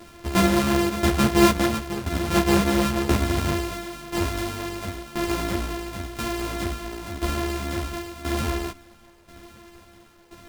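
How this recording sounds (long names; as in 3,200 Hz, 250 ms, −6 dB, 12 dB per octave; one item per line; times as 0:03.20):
a buzz of ramps at a fixed pitch in blocks of 128 samples
tremolo saw down 0.97 Hz, depth 80%
a quantiser's noise floor 10 bits, dither none
a shimmering, thickened sound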